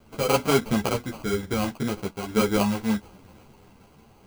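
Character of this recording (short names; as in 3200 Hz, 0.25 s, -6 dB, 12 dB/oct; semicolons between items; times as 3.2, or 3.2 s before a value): aliases and images of a low sample rate 1800 Hz, jitter 0%; random-step tremolo; a quantiser's noise floor 10-bit, dither none; a shimmering, thickened sound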